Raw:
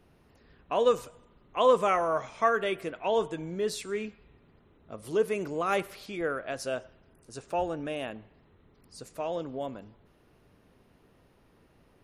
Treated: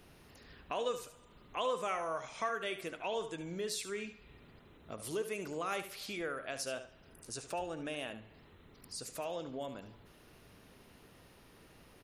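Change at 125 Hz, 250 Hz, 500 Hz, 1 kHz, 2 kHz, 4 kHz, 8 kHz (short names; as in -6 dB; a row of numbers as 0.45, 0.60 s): -7.0, -8.0, -10.5, -9.5, -6.0, -2.5, +1.0 dB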